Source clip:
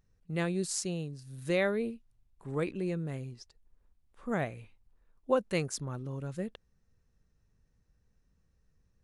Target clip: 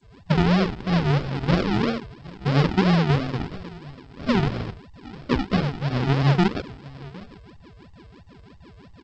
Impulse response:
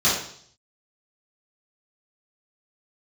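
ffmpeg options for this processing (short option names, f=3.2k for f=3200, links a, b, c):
-filter_complex "[0:a]aeval=exprs='val(0)+0.00316*sin(2*PI*1000*n/s)':c=same,aexciter=amount=13.4:drive=3.4:freq=2.2k,agate=range=-33dB:threshold=-45dB:ratio=3:detection=peak,bass=f=250:g=8,treble=f=4k:g=-10,acompressor=threshold=-34dB:ratio=5[a];[1:a]atrim=start_sample=2205,atrim=end_sample=3087,asetrate=48510,aresample=44100[b];[a][b]afir=irnorm=-1:irlink=0,acrossover=split=200[c][d];[d]acompressor=threshold=-23dB:ratio=5[e];[c][e]amix=inputs=2:normalize=0,equalizer=f=830:w=0.5:g=3.5,aecho=1:1:760:0.0944,aresample=11025,acrusher=samples=16:mix=1:aa=0.000001:lfo=1:lforange=9.6:lforate=3,aresample=44100" -ar 16000 -c:a g722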